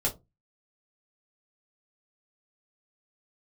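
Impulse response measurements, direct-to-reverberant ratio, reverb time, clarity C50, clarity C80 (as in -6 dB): -2.5 dB, no single decay rate, 16.0 dB, 24.5 dB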